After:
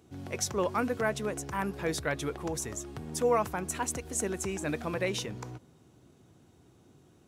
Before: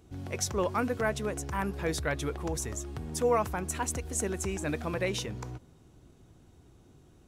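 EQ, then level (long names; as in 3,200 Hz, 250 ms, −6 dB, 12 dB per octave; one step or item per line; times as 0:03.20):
high-pass filter 110 Hz 12 dB per octave
0.0 dB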